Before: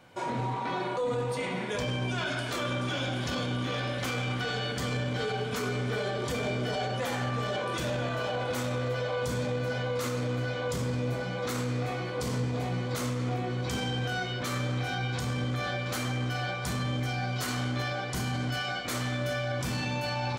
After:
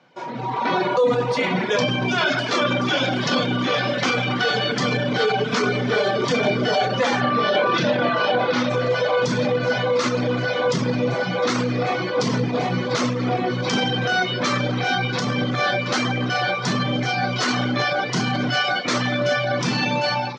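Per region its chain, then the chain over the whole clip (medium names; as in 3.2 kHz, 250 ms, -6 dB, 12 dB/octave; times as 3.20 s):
7.21–8.70 s: low-pass 5.2 kHz 24 dB/octave + doubling 29 ms -7.5 dB
whole clip: reverb removal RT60 0.8 s; elliptic band-pass 150–5700 Hz, stop band 40 dB; level rider gain up to 14 dB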